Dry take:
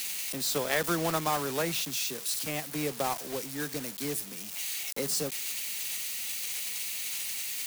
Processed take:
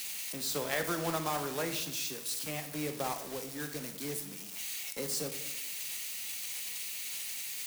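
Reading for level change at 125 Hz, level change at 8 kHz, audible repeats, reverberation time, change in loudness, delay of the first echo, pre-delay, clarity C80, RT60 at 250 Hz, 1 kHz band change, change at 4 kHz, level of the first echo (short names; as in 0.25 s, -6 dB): -3.5 dB, -4.5 dB, none, 0.85 s, -4.5 dB, none, 17 ms, 12.5 dB, 1.0 s, -4.5 dB, -4.5 dB, none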